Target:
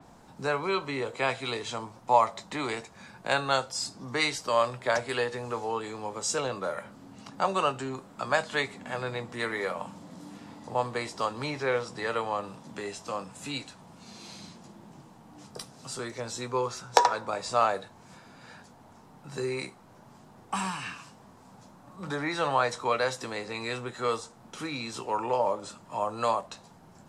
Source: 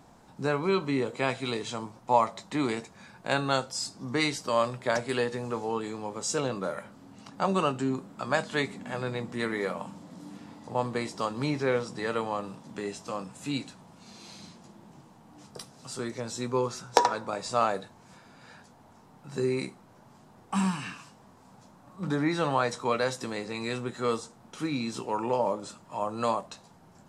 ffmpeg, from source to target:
ffmpeg -i in.wav -filter_complex "[0:a]acrossover=split=110|410|2300[link_01][link_02][link_03][link_04];[link_02]acompressor=threshold=-47dB:ratio=6[link_05];[link_01][link_05][link_03][link_04]amix=inputs=4:normalize=0,adynamicequalizer=threshold=0.00398:dfrequency=4500:dqfactor=0.7:tfrequency=4500:tqfactor=0.7:attack=5:release=100:ratio=0.375:range=1.5:mode=cutabove:tftype=highshelf,volume=2dB" out.wav

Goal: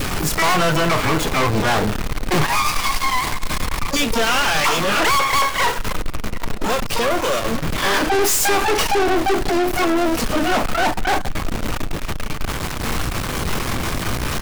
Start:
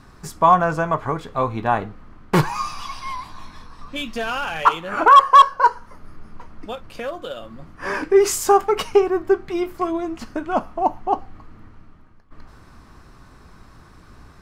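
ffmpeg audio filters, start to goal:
ffmpeg -i in.wav -filter_complex "[0:a]aeval=exprs='val(0)+0.5*0.0422*sgn(val(0))':channel_layout=same,adynamicequalizer=threshold=0.0398:dfrequency=970:dqfactor=3:tfrequency=970:tqfactor=3:attack=5:release=100:ratio=0.375:range=3:mode=cutabove:tftype=bell,asplit=2[link_01][link_02];[link_02]acontrast=51,volume=0dB[link_03];[link_01][link_03]amix=inputs=2:normalize=0,asplit=3[link_04][link_05][link_06];[link_05]asetrate=33038,aresample=44100,atempo=1.33484,volume=-12dB[link_07];[link_06]asetrate=88200,aresample=44100,atempo=0.5,volume=-4dB[link_08];[link_04][link_07][link_08]amix=inputs=3:normalize=0,aeval=exprs='(tanh(7.08*val(0)+0.6)-tanh(0.6))/7.08':channel_layout=same,volume=1.5dB" out.wav

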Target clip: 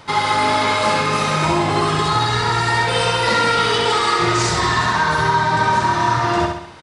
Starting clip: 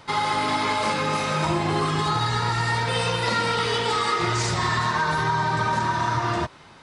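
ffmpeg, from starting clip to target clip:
ffmpeg -i in.wav -af "aecho=1:1:66|132|198|264|330|396:0.596|0.286|0.137|0.0659|0.0316|0.0152,volume=5dB" out.wav

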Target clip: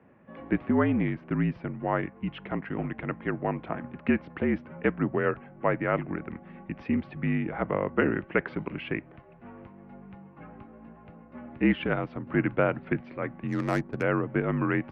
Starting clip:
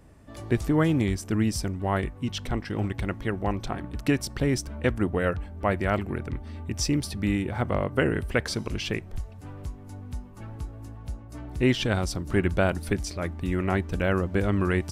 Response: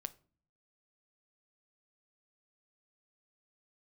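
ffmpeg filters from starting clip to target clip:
-filter_complex "[0:a]highpass=frequency=190:width_type=q:width=0.5412,highpass=frequency=190:width_type=q:width=1.307,lowpass=frequency=2600:width_type=q:width=0.5176,lowpass=frequency=2600:width_type=q:width=0.7071,lowpass=frequency=2600:width_type=q:width=1.932,afreqshift=-52,asplit=3[link_01][link_02][link_03];[link_01]afade=type=out:start_time=13.47:duration=0.02[link_04];[link_02]adynamicsmooth=sensitivity=4.5:basefreq=890,afade=type=in:start_time=13.47:duration=0.02,afade=type=out:start_time=14.01:duration=0.02[link_05];[link_03]afade=type=in:start_time=14.01:duration=0.02[link_06];[link_04][link_05][link_06]amix=inputs=3:normalize=0"

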